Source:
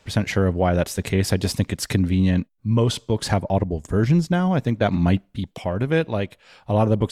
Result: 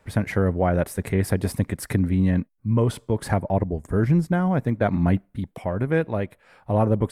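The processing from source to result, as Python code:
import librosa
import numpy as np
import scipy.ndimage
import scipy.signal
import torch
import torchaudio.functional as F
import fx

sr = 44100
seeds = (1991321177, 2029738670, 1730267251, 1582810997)

y = fx.band_shelf(x, sr, hz=4400.0, db=-11.0, octaves=1.7)
y = y * 10.0 ** (-1.5 / 20.0)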